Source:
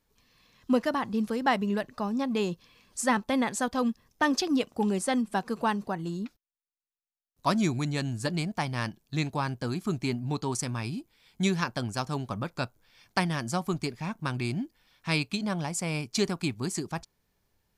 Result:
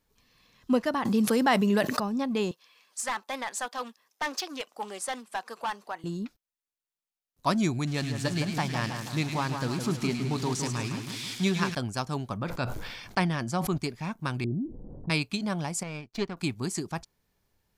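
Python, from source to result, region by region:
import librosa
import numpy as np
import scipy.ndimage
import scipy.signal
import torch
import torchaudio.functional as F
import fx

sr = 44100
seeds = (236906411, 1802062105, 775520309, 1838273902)

y = fx.chain(x, sr, fx.highpass(hz=160.0, slope=12),
    fx.high_shelf(hz=5600.0, db=6.0),
    fx.env_flatten(amount_pct=70), at=(1.05, 2.0))
y = fx.chain(y, sr, fx.highpass(hz=690.0, slope=12),
    fx.overload_stage(gain_db=25.5),
    fx.doppler_dist(depth_ms=0.15), at=(2.51, 6.04))
y = fx.chain(y, sr, fx.crossing_spikes(level_db=-23.5),
    fx.lowpass(hz=5300.0, slope=12),
    fx.echo_split(split_hz=1800.0, low_ms=161, high_ms=105, feedback_pct=52, wet_db=-6), at=(7.87, 11.75))
y = fx.chain(y, sr, fx.high_shelf(hz=6600.0, db=-10.0),
    fx.sustainer(db_per_s=41.0), at=(12.37, 13.78))
y = fx.chain(y, sr, fx.cheby2_lowpass(hz=2100.0, order=4, stop_db=70),
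    fx.env_flatten(amount_pct=70), at=(14.44, 15.1))
y = fx.chain(y, sr, fx.halfwave_gain(db=-3.0),
    fx.lowpass(hz=3400.0, slope=12),
    fx.power_curve(exponent=1.4), at=(15.83, 16.37))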